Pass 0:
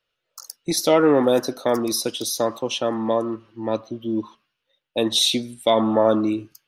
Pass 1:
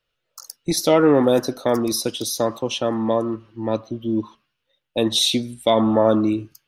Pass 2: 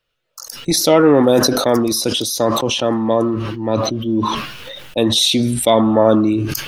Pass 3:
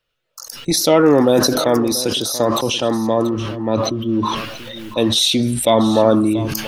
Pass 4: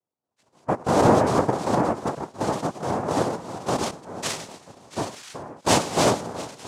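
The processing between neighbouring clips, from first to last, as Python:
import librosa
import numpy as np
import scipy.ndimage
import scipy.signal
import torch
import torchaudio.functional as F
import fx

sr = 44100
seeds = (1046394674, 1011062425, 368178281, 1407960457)

y1 = fx.low_shelf(x, sr, hz=150.0, db=9.5)
y2 = fx.sustainer(y1, sr, db_per_s=30.0)
y2 = F.gain(torch.from_numpy(y2), 3.5).numpy()
y3 = y2 + 10.0 ** (-15.0 / 20.0) * np.pad(y2, (int(684 * sr / 1000.0), 0))[:len(y2)]
y3 = F.gain(torch.from_numpy(y3), -1.0).numpy()
y4 = fx.filter_sweep_bandpass(y3, sr, from_hz=330.0, to_hz=760.0, start_s=2.87, end_s=3.94, q=3.2)
y4 = fx.lpc_monotone(y4, sr, seeds[0], pitch_hz=260.0, order=16)
y4 = fx.noise_vocoder(y4, sr, seeds[1], bands=2)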